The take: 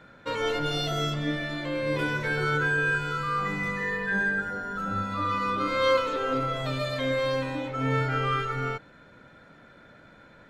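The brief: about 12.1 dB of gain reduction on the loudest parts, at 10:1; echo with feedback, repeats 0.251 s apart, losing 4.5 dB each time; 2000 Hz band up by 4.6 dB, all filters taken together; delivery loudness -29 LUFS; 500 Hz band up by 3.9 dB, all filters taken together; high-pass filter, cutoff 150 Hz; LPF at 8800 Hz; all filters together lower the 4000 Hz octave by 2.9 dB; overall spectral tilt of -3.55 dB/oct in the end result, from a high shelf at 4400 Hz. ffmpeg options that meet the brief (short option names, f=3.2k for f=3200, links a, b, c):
-af "highpass=150,lowpass=8.8k,equalizer=f=500:t=o:g=4,equalizer=f=2k:t=o:g=7.5,equalizer=f=4k:t=o:g=-5,highshelf=f=4.4k:g=-4,acompressor=threshold=-27dB:ratio=10,aecho=1:1:251|502|753|1004|1255|1506|1757|2008|2259:0.596|0.357|0.214|0.129|0.0772|0.0463|0.0278|0.0167|0.01,volume=-0.5dB"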